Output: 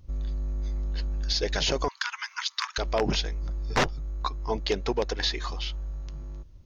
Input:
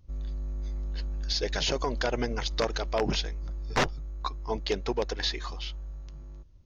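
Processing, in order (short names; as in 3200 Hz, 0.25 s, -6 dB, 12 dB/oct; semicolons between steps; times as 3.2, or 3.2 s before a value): 1.88–2.78 steep high-pass 970 Hz 72 dB/oct; in parallel at 0 dB: compressor, threshold -37 dBFS, peak gain reduction 15 dB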